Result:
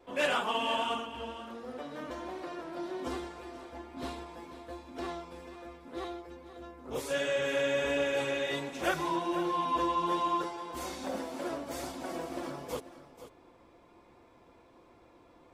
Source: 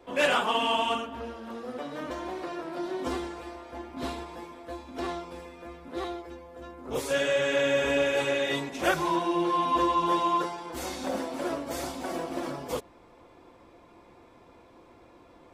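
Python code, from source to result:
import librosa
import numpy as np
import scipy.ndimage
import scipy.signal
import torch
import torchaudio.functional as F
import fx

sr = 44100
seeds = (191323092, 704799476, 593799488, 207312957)

p1 = fx.vibrato(x, sr, rate_hz=1.3, depth_cents=12.0)
p2 = p1 + fx.echo_single(p1, sr, ms=489, db=-13.5, dry=0)
y = F.gain(torch.from_numpy(p2), -5.0).numpy()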